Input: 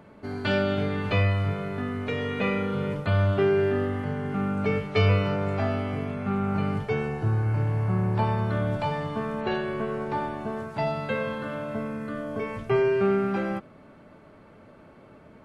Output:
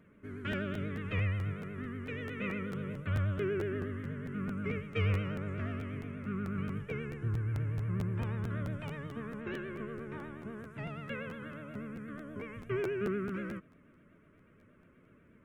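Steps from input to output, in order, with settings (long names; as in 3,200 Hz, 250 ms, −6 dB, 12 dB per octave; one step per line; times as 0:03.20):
phaser with its sweep stopped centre 1,900 Hz, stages 4
pitch vibrato 8.3 Hz 98 cents
regular buffer underruns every 0.22 s, samples 512, repeat, from 0:00.51
level −8.5 dB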